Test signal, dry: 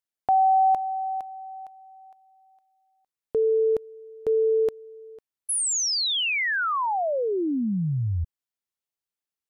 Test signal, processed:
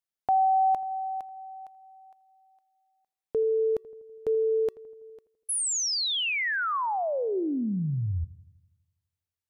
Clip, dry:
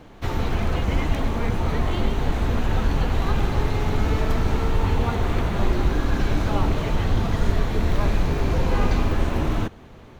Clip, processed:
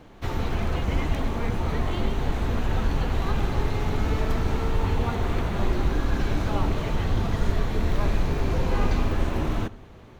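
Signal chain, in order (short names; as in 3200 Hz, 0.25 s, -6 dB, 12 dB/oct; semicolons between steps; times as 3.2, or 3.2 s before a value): resonator 380 Hz, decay 0.31 s, harmonics odd, mix 30%; on a send: darkening echo 82 ms, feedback 62%, low-pass 1400 Hz, level -19 dB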